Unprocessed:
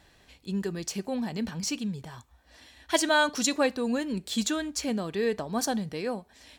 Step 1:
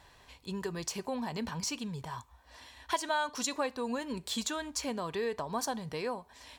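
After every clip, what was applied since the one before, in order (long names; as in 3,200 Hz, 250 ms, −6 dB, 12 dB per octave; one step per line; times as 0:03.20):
thirty-one-band graphic EQ 200 Hz −8 dB, 315 Hz −6 dB, 1,000 Hz +11 dB
downward compressor 2.5 to 1, threshold −33 dBFS, peak gain reduction 12.5 dB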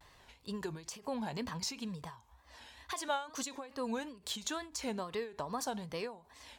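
tape wow and flutter 130 cents
every ending faded ahead of time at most 140 dB per second
level −2 dB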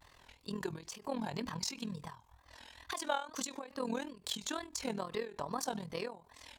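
amplitude modulation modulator 41 Hz, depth 70%
level +3.5 dB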